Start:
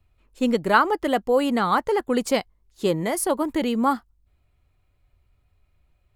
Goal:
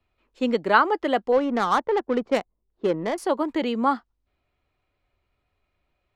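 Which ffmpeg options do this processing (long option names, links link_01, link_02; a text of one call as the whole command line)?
ffmpeg -i in.wav -filter_complex "[0:a]acrossover=split=210 5700:gain=0.224 1 0.0891[link_01][link_02][link_03];[link_01][link_02][link_03]amix=inputs=3:normalize=0,asettb=1/sr,asplit=3[link_04][link_05][link_06];[link_04]atrim=end=1.324[link_07];[link_05]atrim=start=1.32:end=3.18,asetpts=PTS-STARTPTS,afade=type=in:duration=0.004:curve=qsin,afade=type=out:start_time=1.856:duration=0.004:curve=qsin,adynamicsmooth=sensitivity=1.5:basefreq=700[link_08];[link_06]atrim=start=3.176[link_09];[link_07][link_08]acrossfade=duration=0.004:curve1=hsin:curve2=qsin[link_10];[link_10][link_09]acrossfade=duration=0.004:curve1=qsin:curve2=hsin" out.wav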